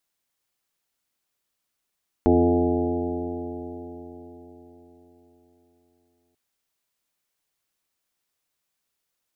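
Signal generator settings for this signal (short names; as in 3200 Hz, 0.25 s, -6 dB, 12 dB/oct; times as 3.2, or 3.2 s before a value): stretched partials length 4.09 s, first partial 84.8 Hz, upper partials -9/4/4/1.5/-15/-4/-6/-7 dB, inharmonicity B 0.0022, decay 4.44 s, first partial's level -22.5 dB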